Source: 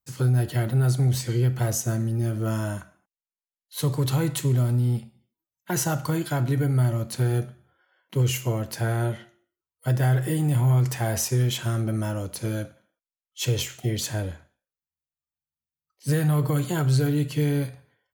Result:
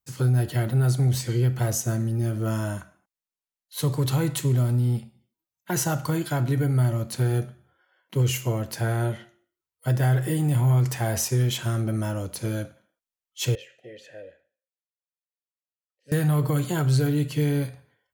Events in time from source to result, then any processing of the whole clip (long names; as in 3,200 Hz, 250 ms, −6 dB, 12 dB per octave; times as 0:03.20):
0:13.55–0:16.12: formant filter e